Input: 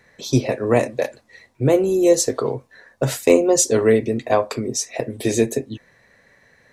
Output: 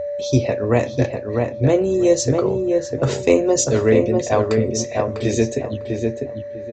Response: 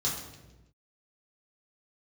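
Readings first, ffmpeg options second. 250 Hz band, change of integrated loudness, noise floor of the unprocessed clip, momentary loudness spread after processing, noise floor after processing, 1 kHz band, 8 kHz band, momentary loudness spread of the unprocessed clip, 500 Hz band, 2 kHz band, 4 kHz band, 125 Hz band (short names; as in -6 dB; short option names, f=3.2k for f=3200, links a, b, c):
+1.5 dB, 0.0 dB, -58 dBFS, 8 LU, -31 dBFS, 0.0 dB, -2.5 dB, 11 LU, +1.0 dB, 0.0 dB, -1.0 dB, +4.5 dB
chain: -filter_complex "[0:a]asplit=2[a][b];[1:a]atrim=start_sample=2205[c];[b][c]afir=irnorm=-1:irlink=0,volume=-28.5dB[d];[a][d]amix=inputs=2:normalize=0,aeval=exprs='val(0)+0.0794*sin(2*PI*580*n/s)':c=same,aresample=16000,aresample=44100,equalizer=f=76:t=o:w=0.85:g=14.5,asplit=2[e][f];[f]adelay=649,lowpass=f=1.9k:p=1,volume=-3.5dB,asplit=2[g][h];[h]adelay=649,lowpass=f=1.9k:p=1,volume=0.23,asplit=2[i][j];[j]adelay=649,lowpass=f=1.9k:p=1,volume=0.23[k];[g][i][k]amix=inputs=3:normalize=0[l];[e][l]amix=inputs=2:normalize=0,volume=-1dB"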